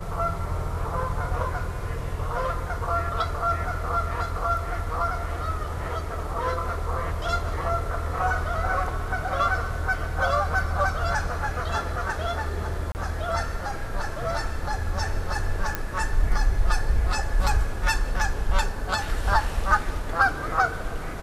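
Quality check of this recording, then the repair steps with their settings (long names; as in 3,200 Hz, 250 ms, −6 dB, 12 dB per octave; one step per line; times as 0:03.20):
0:12.92–0:12.95: drop-out 29 ms
0:15.75: click −11 dBFS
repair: click removal
repair the gap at 0:12.92, 29 ms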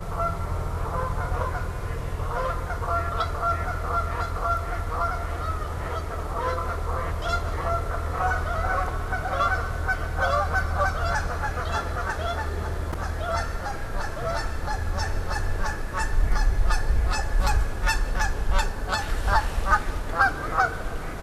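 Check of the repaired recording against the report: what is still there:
none of them is left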